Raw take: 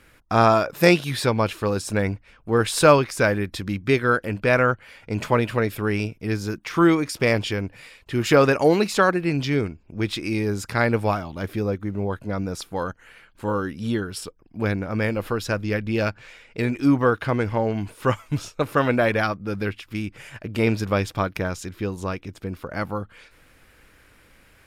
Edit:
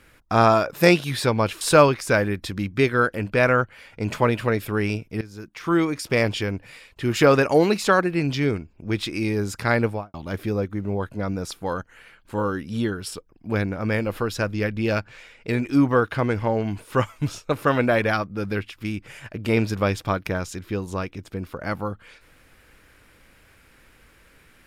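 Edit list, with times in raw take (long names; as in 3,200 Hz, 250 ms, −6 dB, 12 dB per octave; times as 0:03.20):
0:01.61–0:02.71: remove
0:06.31–0:07.62: fade in equal-power, from −18 dB
0:10.90–0:11.24: fade out and dull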